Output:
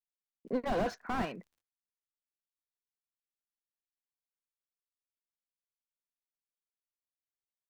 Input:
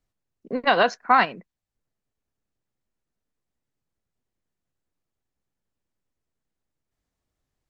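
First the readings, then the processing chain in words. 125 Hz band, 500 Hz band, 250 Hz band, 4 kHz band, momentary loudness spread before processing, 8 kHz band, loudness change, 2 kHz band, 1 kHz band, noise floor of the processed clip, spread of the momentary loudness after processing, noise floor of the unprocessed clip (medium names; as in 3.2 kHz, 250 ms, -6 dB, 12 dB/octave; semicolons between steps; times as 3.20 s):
-1.5 dB, -10.0 dB, -5.0 dB, -18.5 dB, 8 LU, no reading, -14.0 dB, -19.0 dB, -17.0 dB, under -85 dBFS, 7 LU, -85 dBFS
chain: crackle 53 per s -52 dBFS; expander -53 dBFS; slew-rate limiter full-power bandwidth 38 Hz; trim -4.5 dB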